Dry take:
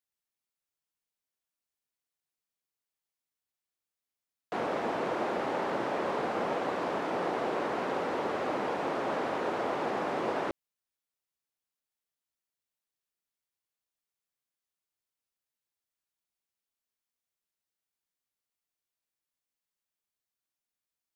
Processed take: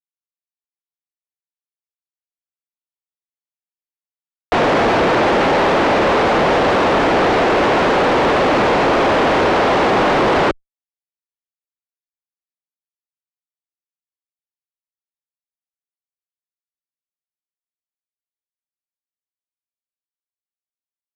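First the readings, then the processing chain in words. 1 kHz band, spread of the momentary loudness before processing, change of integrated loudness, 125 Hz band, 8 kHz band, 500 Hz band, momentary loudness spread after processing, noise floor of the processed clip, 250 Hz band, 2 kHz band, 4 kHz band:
+17.5 dB, 1 LU, +18.0 dB, +21.0 dB, +18.5 dB, +17.5 dB, 1 LU, under -85 dBFS, +18.0 dB, +20.0 dB, +21.5 dB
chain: fuzz box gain 43 dB, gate -49 dBFS; air absorption 130 m; added harmonics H 7 -27 dB, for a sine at 1 dBFS; gain +3.5 dB

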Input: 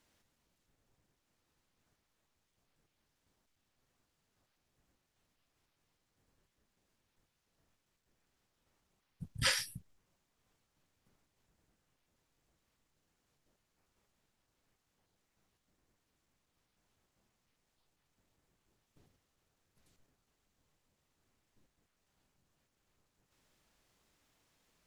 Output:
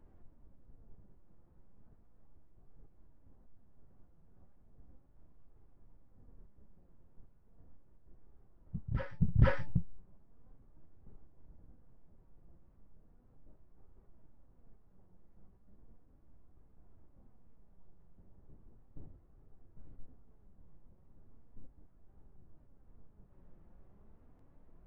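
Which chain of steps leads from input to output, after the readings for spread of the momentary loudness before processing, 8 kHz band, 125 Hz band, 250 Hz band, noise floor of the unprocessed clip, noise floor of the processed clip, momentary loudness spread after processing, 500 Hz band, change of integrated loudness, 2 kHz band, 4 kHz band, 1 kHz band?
16 LU, under -30 dB, +15.5 dB, +15.0 dB, -82 dBFS, -64 dBFS, 16 LU, +10.5 dB, -1.0 dB, -4.5 dB, -20.0 dB, +3.5 dB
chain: LPF 1100 Hz 12 dB/oct; tilt -3.5 dB/oct; de-hum 291.9 Hz, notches 3; in parallel at -9 dB: wavefolder -25 dBFS; on the sum: flange 0.36 Hz, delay 2.3 ms, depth 3.6 ms, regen +69%; on a send: reverse echo 0.473 s -10.5 dB; on the sum: gain +8.5 dB

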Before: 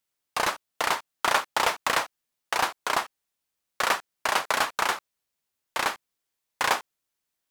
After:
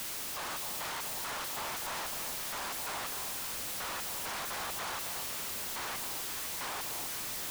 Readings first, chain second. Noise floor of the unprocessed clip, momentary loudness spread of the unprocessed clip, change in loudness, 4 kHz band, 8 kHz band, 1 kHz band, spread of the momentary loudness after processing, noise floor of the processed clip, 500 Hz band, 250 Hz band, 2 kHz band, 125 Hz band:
-83 dBFS, 8 LU, -8.5 dB, -7.0 dB, -1.0 dB, -13.0 dB, 0 LU, -39 dBFS, -11.5 dB, -6.0 dB, -12.0 dB, -1.5 dB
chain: infinite clipping; echo with dull and thin repeats by turns 0.254 s, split 1000 Hz, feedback 58%, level -4 dB; gain -8.5 dB

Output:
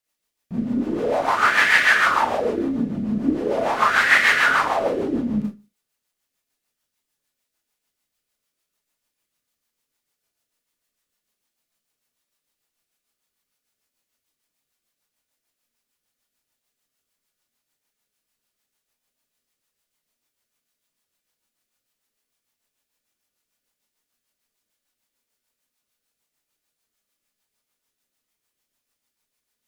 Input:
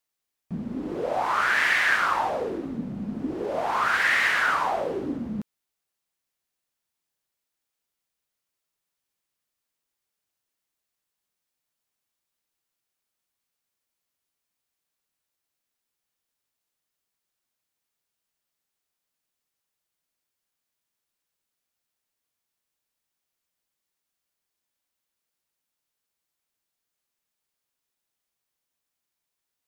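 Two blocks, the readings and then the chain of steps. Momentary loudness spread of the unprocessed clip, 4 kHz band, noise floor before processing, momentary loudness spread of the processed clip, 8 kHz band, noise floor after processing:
13 LU, +6.0 dB, -84 dBFS, 11 LU, +6.0 dB, -82 dBFS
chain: Schroeder reverb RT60 0.3 s, combs from 26 ms, DRR -3.5 dB; rotary speaker horn 6.7 Hz; gain +3.5 dB

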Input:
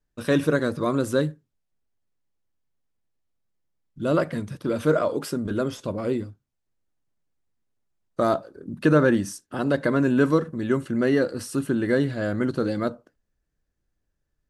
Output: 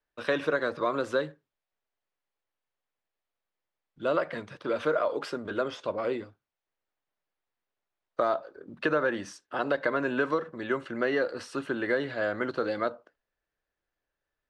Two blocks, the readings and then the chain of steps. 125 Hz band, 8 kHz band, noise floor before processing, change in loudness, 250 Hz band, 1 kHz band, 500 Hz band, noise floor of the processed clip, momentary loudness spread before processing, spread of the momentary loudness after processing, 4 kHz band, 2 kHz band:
-17.0 dB, under -10 dB, -78 dBFS, -6.0 dB, -11.5 dB, -1.5 dB, -4.5 dB, under -85 dBFS, 9 LU, 9 LU, -3.0 dB, -0.5 dB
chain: LPF 6800 Hz 12 dB/oct; three-band isolator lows -18 dB, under 440 Hz, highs -13 dB, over 4200 Hz; compressor 5:1, threshold -25 dBFS, peak gain reduction 7.5 dB; gain +2.5 dB

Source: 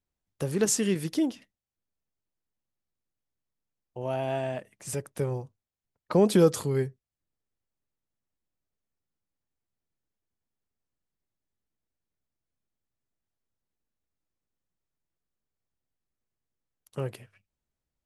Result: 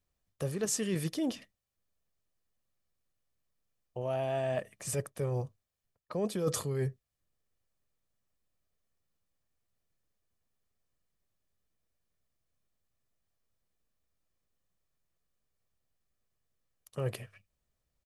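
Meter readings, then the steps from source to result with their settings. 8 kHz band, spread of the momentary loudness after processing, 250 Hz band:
-5.0 dB, 13 LU, -8.5 dB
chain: comb 1.7 ms, depth 31%; reverse; compressor 16:1, threshold -32 dBFS, peak gain reduction 18.5 dB; reverse; gain +3.5 dB

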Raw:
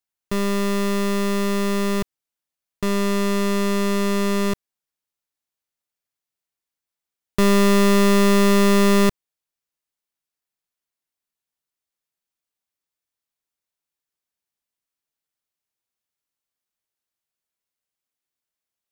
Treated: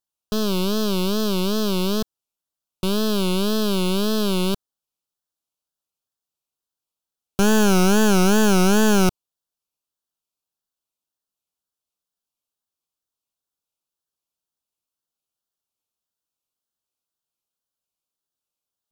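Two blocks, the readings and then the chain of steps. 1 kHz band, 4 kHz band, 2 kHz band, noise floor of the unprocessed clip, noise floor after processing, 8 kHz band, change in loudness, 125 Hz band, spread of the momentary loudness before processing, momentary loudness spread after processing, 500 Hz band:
-1.0 dB, +3.0 dB, -1.0 dB, under -85 dBFS, under -85 dBFS, +2.5 dB, -0.5 dB, +0.5 dB, 10 LU, 9 LU, -1.5 dB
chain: self-modulated delay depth 0.24 ms; Butterworth band-stop 2000 Hz, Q 1.7; wow and flutter 150 cents

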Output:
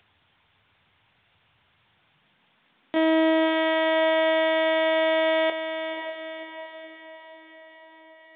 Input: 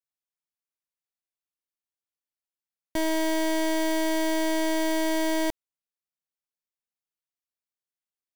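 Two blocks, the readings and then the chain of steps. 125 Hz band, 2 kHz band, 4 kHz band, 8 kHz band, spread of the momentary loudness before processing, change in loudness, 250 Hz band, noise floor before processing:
n/a, +7.0 dB, +5.0 dB, under -40 dB, 3 LU, +3.5 dB, +0.5 dB, under -85 dBFS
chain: bell 370 Hz -9.5 dB 0.47 oct; LPC vocoder at 8 kHz pitch kept; diffused feedback echo 0.535 s, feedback 52%, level -8 dB; high-pass sweep 92 Hz -> 490 Hz, 1.71–3.75; upward compressor, threshold -49 dBFS; gain +6 dB; µ-law 64 kbps 8000 Hz

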